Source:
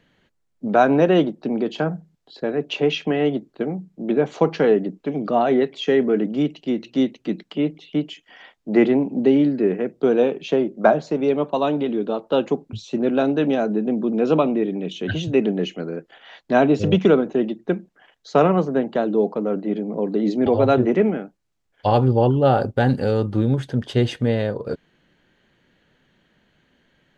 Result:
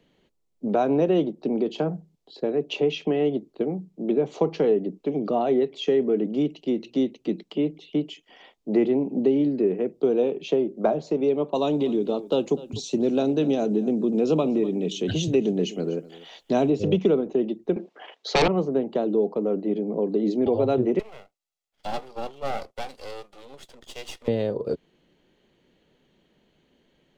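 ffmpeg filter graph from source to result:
-filter_complex "[0:a]asettb=1/sr,asplit=3[s0][s1][s2];[s0]atrim=end=11.554[s3];[s1]atrim=start=11.55:end=16.7,asetpts=PTS-STARTPTS,afade=t=in:d=0.004:c=qsin,afade=t=out:st=5.146:d=0.004:c=qsin,bass=f=250:g=4,treble=f=4000:g=13,aecho=1:1:247:0.106,atrim=end_sample=227115[s4];[s2]atrim=start=16.696[s5];[s3][s4]acrossfade=d=0.004:c1=hsin:c2=qsin[s6];[s6][s5]acrossfade=d=0.004:c1=qsin:c2=hsin,asettb=1/sr,asplit=3[s7][s8][s9];[s7]atrim=end=17.764[s10];[s8]atrim=start=17.76:end=18.48,asetpts=PTS-STARTPTS,afade=t=in:d=0.004:c=qsin,afade=t=out:st=0.716:d=0.004:c=qsin,highpass=460,lowpass=3800,aeval=exprs='0.501*sin(PI/2*3.98*val(0)/0.501)':c=same[s11];[s9]atrim=start=18.476[s12];[s10][s11]acrossfade=d=0.004:c1=hsin:c2=qsin[s13];[s13][s12]acrossfade=d=0.004:c1=qsin:c2=hsin,asettb=1/sr,asplit=3[s14][s15][s16];[s14]atrim=end=20.994[s17];[s15]atrim=start=20.99:end=24.28,asetpts=PTS-STARTPTS,afade=t=in:d=0.004:c=qsin,afade=t=out:st=3.286:d=0.004:c=qsin,highpass=990,aecho=1:1:1.5:0.47,atrim=end_sample=145089,aeval=exprs='max(val(0),0)':c=same[s18];[s16]atrim=start=24.276[s19];[s17][s18]acrossfade=d=0.004:c1=hsin:c2=qsin[s20];[s20][s19]acrossfade=d=0.004:c1=qsin:c2=hsin,equalizer=f=100:t=o:w=0.67:g=-6,equalizer=f=400:t=o:w=0.67:g=5,equalizer=f=1600:t=o:w=0.67:g=-10,acrossover=split=140[s21][s22];[s22]acompressor=threshold=0.1:ratio=2[s23];[s21][s23]amix=inputs=2:normalize=0,volume=0.794"

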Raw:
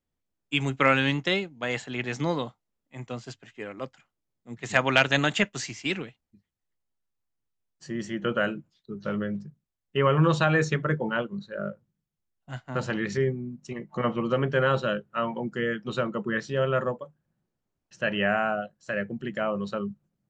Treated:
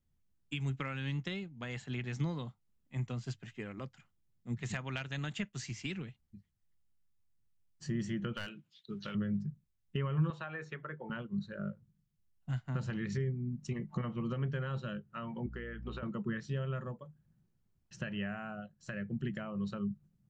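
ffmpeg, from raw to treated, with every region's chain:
-filter_complex "[0:a]asettb=1/sr,asplit=3[s0][s1][s2];[s0]atrim=end=8.334[s3];[s1]atrim=start=8.33:end=9.15,asetpts=PTS-STARTPTS,afade=t=in:d=0.004:c=qsin,afade=t=out:st=0.816:d=0.004:c=qsin,highpass=f=500:p=1,equalizer=f=3200:t=o:w=1.2:g=12.5,aeval=exprs='clip(val(0),-1,0.0794)':c=same[s4];[s2]atrim=start=9.146[s5];[s3][s4]acrossfade=d=0.004:c1=hsin:c2=qsin[s6];[s6][s5]acrossfade=d=0.004:c1=qsin:c2=hsin,asettb=1/sr,asplit=3[s7][s8][s9];[s7]atrim=end=10.304[s10];[s8]atrim=start=10.3:end=11.1,asetpts=PTS-STARTPTS,afade=t=in:d=0.004:c=qsin,afade=t=out:st=0.796:d=0.004:c=qsin,highpass=48,acrossover=split=390 2800:gain=0.126 1 0.2[s11][s12][s13];[s11][s12][s13]amix=inputs=3:normalize=0[s14];[s9]atrim=start=11.096[s15];[s10][s14]acrossfade=d=0.004:c1=hsin:c2=qsin[s16];[s16][s15]acrossfade=d=0.004:c1=qsin:c2=hsin,asettb=1/sr,asplit=3[s17][s18][s19];[s17]atrim=end=15.464[s20];[s18]atrim=start=15.46:end=16.03,asetpts=PTS-STARTPTS,afade=t=in:d=0.004:c=qsin,afade=t=out:st=0.566:d=0.004:c=qsin,highpass=360,lowpass=2400,acompressor=threshold=0.02:ratio=2:attack=3.2:release=140:knee=1:detection=peak,aeval=exprs='val(0)+0.00355*(sin(2*PI*60*n/s)+sin(2*PI*2*60*n/s)/2+sin(2*PI*3*60*n/s)/3+sin(2*PI*4*60*n/s)/4+sin(2*PI*5*60*n/s)/5)':c=same[s21];[s19]atrim=start=16.026[s22];[s20][s21]acrossfade=d=0.004:c1=hsin:c2=qsin[s23];[s23][s22]acrossfade=d=0.004:c1=qsin:c2=hsin,equalizer=f=280:t=o:w=0.89:g=-13,acompressor=threshold=0.00794:ratio=3,lowshelf=f=390:t=q:w=1.5:g=11,volume=0.794"

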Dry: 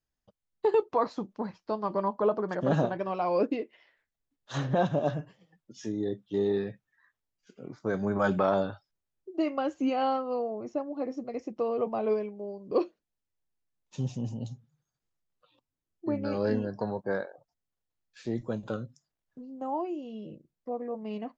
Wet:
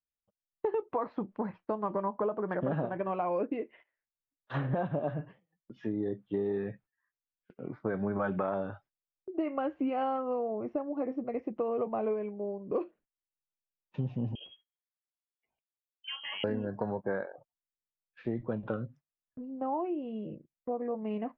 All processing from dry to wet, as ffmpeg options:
-filter_complex "[0:a]asettb=1/sr,asplit=3[s0][s1][s2];[s0]atrim=end=14.354[s3];[s1]atrim=start=14.35:end=16.44,asetpts=PTS-STARTPTS,afade=t=in:d=0.004:c=qsin,afade=t=out:st=2.086:d=0.004:c=qsin,tiltshelf=f=1500:g=-7.5,lowpass=f=2900:t=q:w=0.5098,lowpass=f=2900:t=q:w=0.6013,lowpass=f=2900:t=q:w=0.9,lowpass=f=2900:t=q:w=2.563,afreqshift=-3400[s4];[s2]atrim=start=16.436[s5];[s3][s4]acrossfade=d=0.004:c1=hsin:c2=qsin[s6];[s6][s5]acrossfade=d=0.004:c1=qsin:c2=hsin,agate=range=0.112:threshold=0.002:ratio=16:detection=peak,lowpass=f=2500:w=0.5412,lowpass=f=2500:w=1.3066,acompressor=threshold=0.0282:ratio=6,volume=1.33"

